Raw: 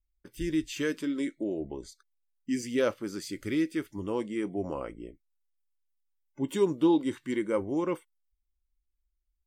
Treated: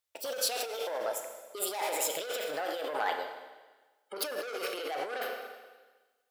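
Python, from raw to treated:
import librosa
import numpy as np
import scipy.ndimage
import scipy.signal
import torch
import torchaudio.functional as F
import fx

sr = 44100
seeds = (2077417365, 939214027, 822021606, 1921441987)

y = fx.speed_glide(x, sr, from_pct=164, to_pct=136)
y = 10.0 ** (-28.5 / 20.0) * np.tanh(y / 10.0 ** (-28.5 / 20.0))
y = fx.rev_schroeder(y, sr, rt60_s=1.3, comb_ms=27, drr_db=6.0)
y = fx.over_compress(y, sr, threshold_db=-37.0, ratio=-1.0)
y = scipy.signal.sosfilt(scipy.signal.butter(2, 730.0, 'highpass', fs=sr, output='sos'), y)
y = y * 10.0 ** (8.5 / 20.0)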